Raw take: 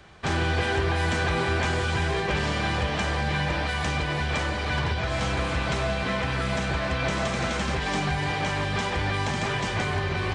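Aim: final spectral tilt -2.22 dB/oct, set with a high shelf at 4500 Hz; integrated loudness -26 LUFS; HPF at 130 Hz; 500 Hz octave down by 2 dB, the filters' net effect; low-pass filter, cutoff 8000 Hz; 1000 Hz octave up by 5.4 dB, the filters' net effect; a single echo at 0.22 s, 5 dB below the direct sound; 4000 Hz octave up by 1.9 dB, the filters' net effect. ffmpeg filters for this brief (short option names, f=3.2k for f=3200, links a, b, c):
-af "highpass=130,lowpass=8k,equalizer=f=500:t=o:g=-5.5,equalizer=f=1k:t=o:g=8.5,equalizer=f=4k:t=o:g=5,highshelf=f=4.5k:g=-6,aecho=1:1:220:0.562,volume=-2dB"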